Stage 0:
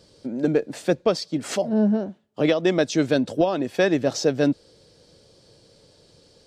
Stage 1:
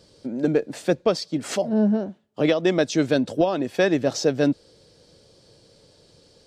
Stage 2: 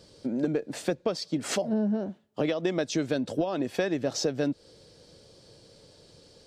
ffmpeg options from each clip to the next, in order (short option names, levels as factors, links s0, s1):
-af anull
-af "acompressor=threshold=0.0631:ratio=6"